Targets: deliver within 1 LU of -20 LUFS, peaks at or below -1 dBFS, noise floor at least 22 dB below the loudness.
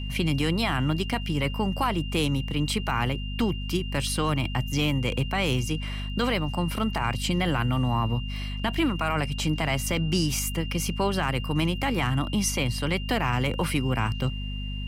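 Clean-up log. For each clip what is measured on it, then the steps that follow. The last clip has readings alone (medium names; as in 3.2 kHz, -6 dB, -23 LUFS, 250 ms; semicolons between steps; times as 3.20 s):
hum 50 Hz; highest harmonic 250 Hz; hum level -30 dBFS; steady tone 2.8 kHz; tone level -39 dBFS; loudness -26.5 LUFS; peak level -13.5 dBFS; loudness target -20.0 LUFS
-> de-hum 50 Hz, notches 5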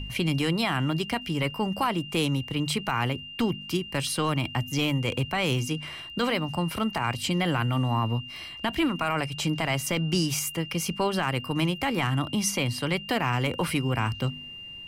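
hum not found; steady tone 2.8 kHz; tone level -39 dBFS
-> band-stop 2.8 kHz, Q 30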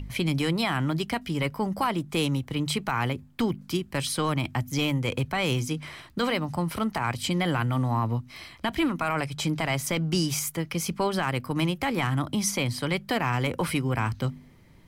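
steady tone not found; loudness -27.5 LUFS; peak level -14.0 dBFS; loudness target -20.0 LUFS
-> trim +7.5 dB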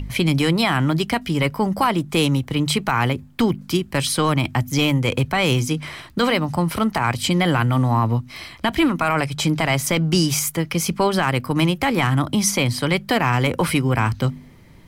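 loudness -20.0 LUFS; peak level -6.5 dBFS; noise floor -44 dBFS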